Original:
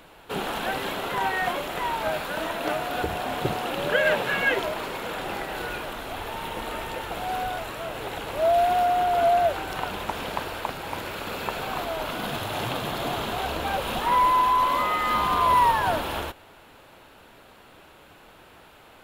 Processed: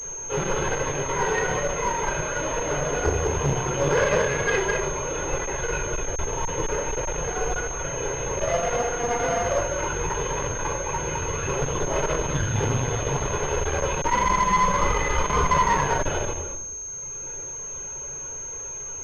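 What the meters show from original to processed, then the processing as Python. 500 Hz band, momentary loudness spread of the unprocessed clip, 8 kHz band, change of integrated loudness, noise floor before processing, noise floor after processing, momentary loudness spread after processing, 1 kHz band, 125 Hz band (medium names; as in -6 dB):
+2.5 dB, 12 LU, +18.0 dB, +0.5 dB, -51 dBFS, -35 dBFS, 10 LU, -2.0 dB, +10.0 dB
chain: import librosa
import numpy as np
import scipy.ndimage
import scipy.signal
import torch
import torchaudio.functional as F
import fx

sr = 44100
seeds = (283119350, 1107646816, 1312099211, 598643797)

p1 = fx.chorus_voices(x, sr, voices=4, hz=0.94, base_ms=11, depth_ms=4.0, mix_pct=60)
p2 = p1 + fx.echo_single(p1, sr, ms=209, db=-5.0, dry=0)
p3 = fx.dereverb_blind(p2, sr, rt60_s=1.7)
p4 = fx.sample_hold(p3, sr, seeds[0], rate_hz=1200.0, jitter_pct=0)
p5 = p3 + (p4 * 10.0 ** (-6.0 / 20.0))
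p6 = 10.0 ** (-20.0 / 20.0) * np.tanh(p5 / 10.0 ** (-20.0 / 20.0))
p7 = p6 + 0.65 * np.pad(p6, (int(2.0 * sr / 1000.0), 0))[:len(p6)]
p8 = fx.room_shoebox(p7, sr, seeds[1], volume_m3=930.0, walls='furnished', distance_m=4.1)
p9 = fx.clip_asym(p8, sr, top_db=-28.5, bottom_db=-11.5)
p10 = fx.pwm(p9, sr, carrier_hz=6400.0)
y = p10 * 10.0 ** (1.5 / 20.0)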